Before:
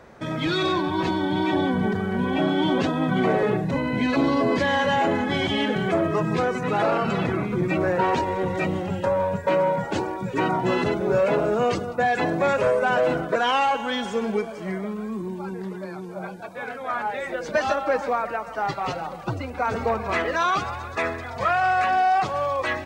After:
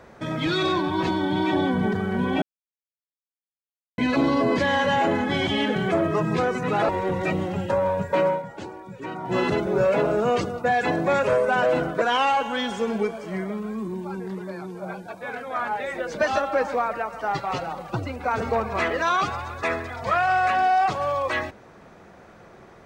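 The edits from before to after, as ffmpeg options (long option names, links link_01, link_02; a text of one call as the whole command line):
ffmpeg -i in.wav -filter_complex "[0:a]asplit=6[link_01][link_02][link_03][link_04][link_05][link_06];[link_01]atrim=end=2.42,asetpts=PTS-STARTPTS,afade=type=out:start_time=2.416:duration=0.004:curve=hsin[link_07];[link_02]atrim=start=2.42:end=3.98,asetpts=PTS-STARTPTS,volume=0[link_08];[link_03]atrim=start=3.98:end=6.892,asetpts=PTS-STARTPTS,afade=type=in:duration=0.004:curve=hsin[link_09];[link_04]atrim=start=8.228:end=9.77,asetpts=PTS-STARTPTS,afade=type=out:start_time=1.382:duration=0.16:silence=0.298538[link_10];[link_05]atrim=start=9.77:end=10.56,asetpts=PTS-STARTPTS,volume=-10.5dB[link_11];[link_06]atrim=start=10.56,asetpts=PTS-STARTPTS,afade=type=in:duration=0.16:silence=0.298538[link_12];[link_07][link_08][link_09]concat=n=3:v=0:a=1[link_13];[link_10][link_11][link_12]concat=n=3:v=0:a=1[link_14];[link_13][link_14]acrossfade=duration=0.004:curve1=hsin:curve2=hsin" out.wav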